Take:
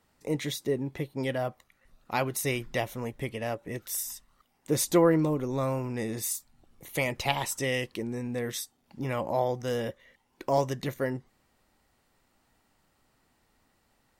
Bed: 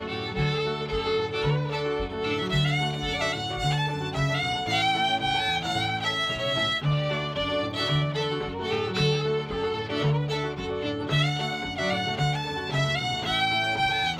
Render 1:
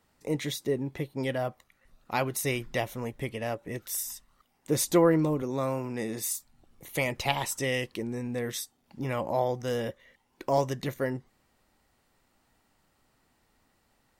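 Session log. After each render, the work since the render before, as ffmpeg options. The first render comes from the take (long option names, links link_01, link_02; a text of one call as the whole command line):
ffmpeg -i in.wav -filter_complex "[0:a]asettb=1/sr,asplit=3[link_01][link_02][link_03];[link_01]atrim=end=5.424[link_04];[link_02]atrim=start=5.42:end=6.35,asetpts=PTS-STARTPTS,afade=type=in:duration=0.004:curve=qsin,afade=type=out:start_time=0.926:duration=0.004:curve=qsin,highpass=140[link_05];[link_03]atrim=start=6.346[link_06];[link_04][link_05]acrossfade=duration=0.004:curve1=hsin:curve2=qsin[link_07];[link_07][link_06]acrossfade=duration=0.004:curve1=qsin:curve2=hsin" out.wav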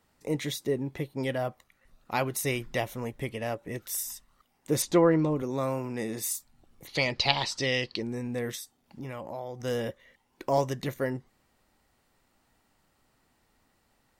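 ffmpeg -i in.wav -filter_complex "[0:a]asettb=1/sr,asplit=3[link_01][link_02][link_03];[link_01]atrim=end=4.824[link_04];[link_02]atrim=start=4.82:end=5.36,asetpts=PTS-STARTPTS,afade=type=in:duration=0.004:curve=qsin,afade=type=out:start_time=0.536:duration=0.004:curve=qsin,lowpass=5400[link_05];[link_03]atrim=start=5.356[link_06];[link_04][link_05]acrossfade=duration=0.004:curve1=hsin:curve2=qsin[link_07];[link_07][link_06]acrossfade=duration=0.004:curve1=qsin:curve2=hsin,asettb=1/sr,asplit=3[link_08][link_09][link_10];[link_08]atrim=end=6.874[link_11];[link_09]atrim=start=6.87:end=8.03,asetpts=PTS-STARTPTS,afade=type=in:duration=0.004:curve=qsin,afade=type=out:start_time=1.156:duration=0.004:curve=qsin,lowpass=frequency=4500:width_type=q:width=6.8[link_12];[link_10]atrim=start=8.026[link_13];[link_11][link_12]acrossfade=duration=0.004:curve1=hsin:curve2=qsin[link_14];[link_14][link_13]acrossfade=duration=0.004:curve1=qsin:curve2=hsin,asettb=1/sr,asplit=3[link_15][link_16][link_17];[link_15]atrim=end=8.554[link_18];[link_16]atrim=start=8.55:end=9.6,asetpts=PTS-STARTPTS,afade=type=in:duration=0.004:curve=qsin,afade=type=out:start_time=1.046:duration=0.004:curve=qsin,acompressor=threshold=-38dB:ratio=2.5:attack=3.2:release=140:knee=1:detection=peak[link_19];[link_17]atrim=start=9.596[link_20];[link_18][link_19]acrossfade=duration=0.004:curve1=hsin:curve2=qsin[link_21];[link_21][link_20]acrossfade=duration=0.004:curve1=qsin:curve2=hsin" out.wav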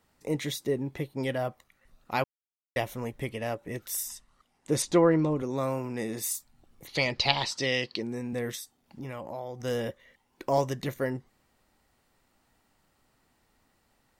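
ffmpeg -i in.wav -filter_complex "[0:a]asettb=1/sr,asplit=3[link_01][link_02][link_03];[link_01]atrim=end=4.084[link_04];[link_02]atrim=start=4.08:end=5.56,asetpts=PTS-STARTPTS,afade=type=in:duration=0.004:curve=qsin,afade=type=out:start_time=1.476:duration=0.004:curve=qsin,lowpass=frequency=11000:width=0.5412,lowpass=frequency=11000:width=1.3066[link_05];[link_03]atrim=start=5.556[link_06];[link_04][link_05]acrossfade=duration=0.004:curve1=hsin:curve2=qsin[link_07];[link_07][link_06]acrossfade=duration=0.004:curve1=qsin:curve2=hsin,asettb=1/sr,asplit=3[link_08][link_09][link_10];[link_08]atrim=end=7.524[link_11];[link_09]atrim=start=7.52:end=8.33,asetpts=PTS-STARTPTS,afade=type=in:duration=0.004:curve=qsin,afade=type=out:start_time=0.806:duration=0.004:curve=qsin,highpass=120[link_12];[link_10]atrim=start=8.326[link_13];[link_11][link_12]acrossfade=duration=0.004:curve1=hsin:curve2=qsin[link_14];[link_14][link_13]acrossfade=duration=0.004:curve1=qsin:curve2=hsin,asplit=3[link_15][link_16][link_17];[link_15]atrim=end=2.24,asetpts=PTS-STARTPTS,afade=type=out:start_time=2.236:duration=0.004:curve=hsin[link_18];[link_16]atrim=start=2.24:end=2.76,asetpts=PTS-STARTPTS,volume=0[link_19];[link_17]atrim=start=2.76,asetpts=PTS-STARTPTS,afade=type=in:duration=0.004:curve=hsin[link_20];[link_18][link_19][link_20]concat=n=3:v=0:a=1" out.wav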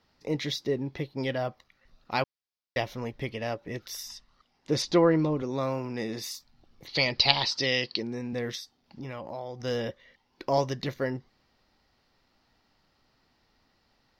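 ffmpeg -i in.wav -af "highshelf=frequency=6500:width_type=q:width=3:gain=-10" out.wav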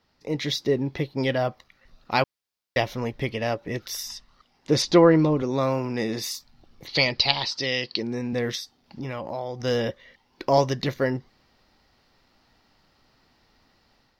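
ffmpeg -i in.wav -af "dynaudnorm=framelen=280:gausssize=3:maxgain=6dB" out.wav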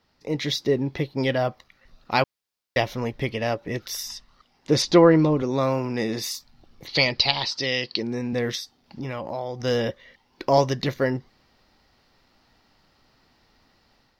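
ffmpeg -i in.wav -af "volume=1dB,alimiter=limit=-3dB:level=0:latency=1" out.wav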